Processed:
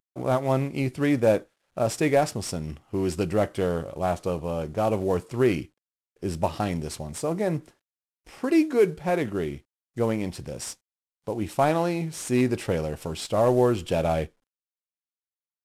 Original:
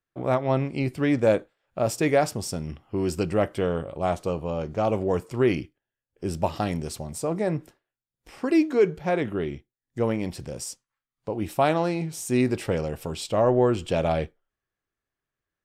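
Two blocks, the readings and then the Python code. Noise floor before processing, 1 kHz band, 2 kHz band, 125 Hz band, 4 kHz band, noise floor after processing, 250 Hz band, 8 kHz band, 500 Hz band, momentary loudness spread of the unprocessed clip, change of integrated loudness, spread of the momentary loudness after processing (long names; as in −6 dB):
below −85 dBFS, 0.0 dB, −0.5 dB, 0.0 dB, 0.0 dB, below −85 dBFS, 0.0 dB, 0.0 dB, 0.0 dB, 12 LU, 0.0 dB, 12 LU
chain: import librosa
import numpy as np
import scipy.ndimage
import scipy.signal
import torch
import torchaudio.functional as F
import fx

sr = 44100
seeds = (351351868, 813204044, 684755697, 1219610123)

y = fx.cvsd(x, sr, bps=64000)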